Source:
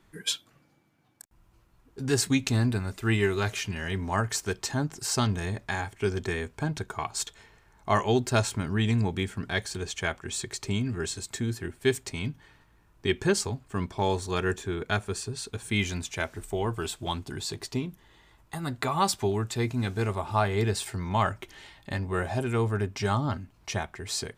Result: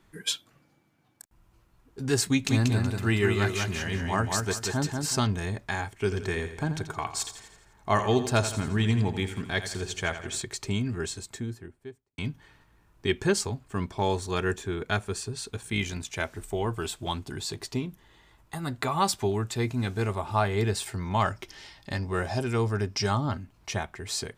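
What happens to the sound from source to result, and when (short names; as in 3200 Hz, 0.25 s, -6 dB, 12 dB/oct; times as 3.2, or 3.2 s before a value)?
2.26–5.18 feedback echo 0.187 s, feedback 28%, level -4 dB
5.93–10.42 feedback echo 84 ms, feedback 52%, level -11 dB
10.93–12.18 studio fade out
15.61–16.13 AM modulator 59 Hz, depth 30%
21.2–23.11 bell 5200 Hz +13 dB 0.37 oct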